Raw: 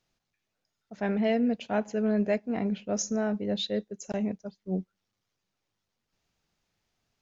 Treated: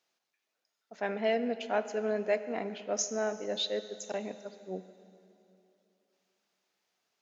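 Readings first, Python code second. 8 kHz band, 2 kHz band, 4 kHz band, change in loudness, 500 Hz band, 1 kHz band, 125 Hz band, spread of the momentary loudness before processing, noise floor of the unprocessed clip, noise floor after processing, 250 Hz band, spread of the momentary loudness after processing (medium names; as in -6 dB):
no reading, 0.0 dB, 0.0 dB, -4.0 dB, -1.0 dB, 0.0 dB, under -10 dB, 8 LU, -83 dBFS, -84 dBFS, -11.0 dB, 12 LU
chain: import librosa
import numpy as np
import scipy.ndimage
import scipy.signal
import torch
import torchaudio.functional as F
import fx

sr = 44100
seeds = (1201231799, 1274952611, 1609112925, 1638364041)

y = scipy.signal.sosfilt(scipy.signal.butter(2, 410.0, 'highpass', fs=sr, output='sos'), x)
y = fx.rev_plate(y, sr, seeds[0], rt60_s=2.9, hf_ratio=0.9, predelay_ms=0, drr_db=12.0)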